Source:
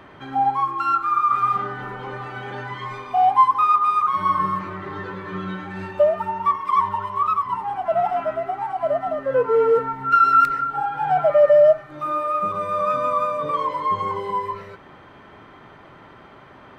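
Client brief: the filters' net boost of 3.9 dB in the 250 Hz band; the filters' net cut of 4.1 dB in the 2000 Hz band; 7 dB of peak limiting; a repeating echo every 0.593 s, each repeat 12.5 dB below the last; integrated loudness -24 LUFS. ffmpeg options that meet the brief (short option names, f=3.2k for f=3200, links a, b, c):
-af "equalizer=f=250:t=o:g=5.5,equalizer=f=2k:t=o:g=-6.5,alimiter=limit=-13.5dB:level=0:latency=1,aecho=1:1:593|1186|1779:0.237|0.0569|0.0137,volume=-1dB"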